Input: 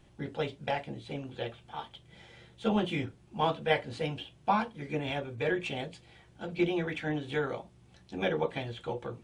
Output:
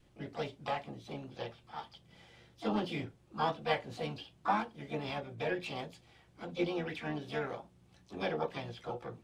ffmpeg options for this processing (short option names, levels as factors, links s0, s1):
-filter_complex "[0:a]adynamicequalizer=threshold=0.00398:dfrequency=800:dqfactor=3.3:tfrequency=800:tqfactor=3.3:attack=5:release=100:ratio=0.375:range=1.5:mode=boostabove:tftype=bell,asplit=3[s0][s1][s2];[s1]asetrate=58866,aresample=44100,atempo=0.749154,volume=0.178[s3];[s2]asetrate=66075,aresample=44100,atempo=0.66742,volume=0.398[s4];[s0][s3][s4]amix=inputs=3:normalize=0,volume=0.501"